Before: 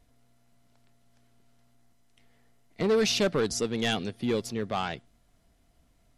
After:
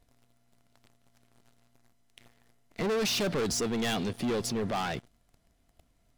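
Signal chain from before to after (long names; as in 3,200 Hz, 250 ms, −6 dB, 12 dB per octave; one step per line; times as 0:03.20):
leveller curve on the samples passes 3
brickwall limiter −28 dBFS, peak gain reduction 10.5 dB
level +2 dB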